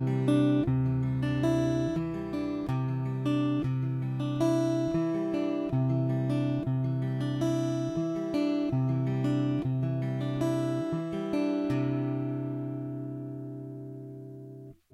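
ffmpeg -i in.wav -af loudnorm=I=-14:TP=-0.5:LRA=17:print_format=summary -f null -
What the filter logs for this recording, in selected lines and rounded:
Input Integrated:    -30.1 LUFS
Input True Peak:     -14.6 dBTP
Input LRA:             8.1 LU
Input Threshold:     -40.6 LUFS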